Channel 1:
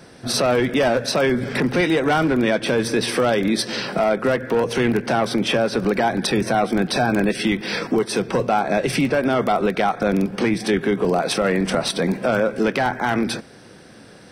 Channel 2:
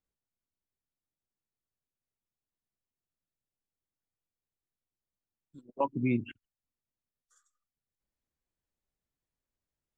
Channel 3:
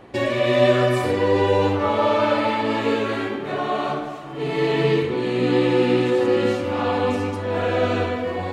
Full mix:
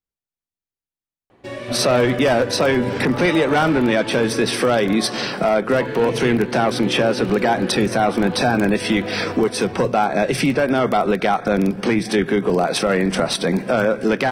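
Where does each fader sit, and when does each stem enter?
+1.5, −3.0, −9.0 decibels; 1.45, 0.00, 1.30 seconds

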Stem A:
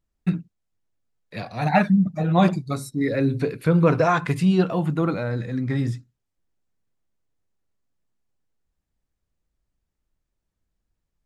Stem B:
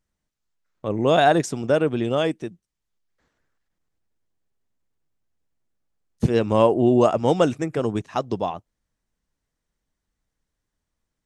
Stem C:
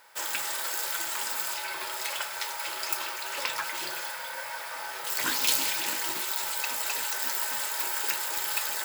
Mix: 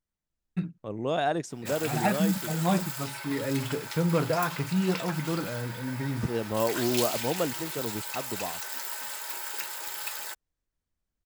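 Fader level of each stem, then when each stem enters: −8.0, −10.5, −5.5 decibels; 0.30, 0.00, 1.50 seconds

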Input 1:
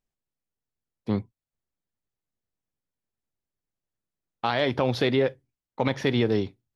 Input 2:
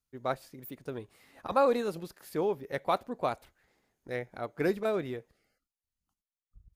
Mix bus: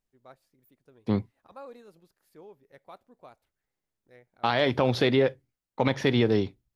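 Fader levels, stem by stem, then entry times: +0.5, −19.5 decibels; 0.00, 0.00 seconds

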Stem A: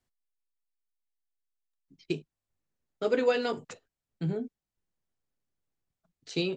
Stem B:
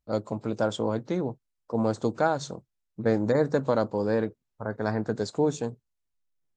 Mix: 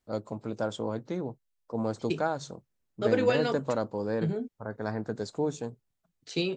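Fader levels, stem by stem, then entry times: +0.5, −5.0 decibels; 0.00, 0.00 seconds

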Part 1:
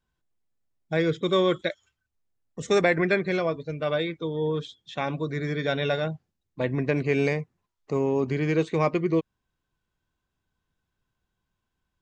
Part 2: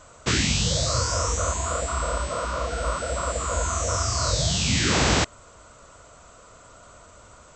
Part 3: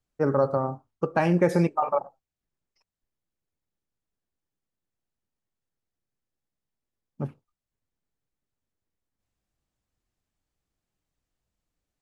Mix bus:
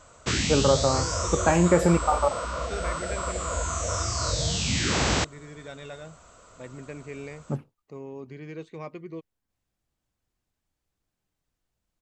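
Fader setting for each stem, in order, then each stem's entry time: −15.0, −3.5, +1.5 decibels; 0.00, 0.00, 0.30 seconds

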